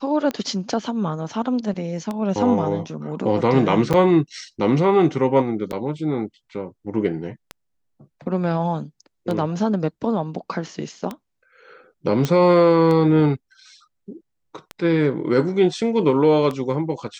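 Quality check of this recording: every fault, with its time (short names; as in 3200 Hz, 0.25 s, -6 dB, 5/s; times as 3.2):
tick 33 1/3 rpm -14 dBFS
3.93–3.94 gap 7.3 ms
5.72–5.73 gap 7.5 ms
12.25 pop -8 dBFS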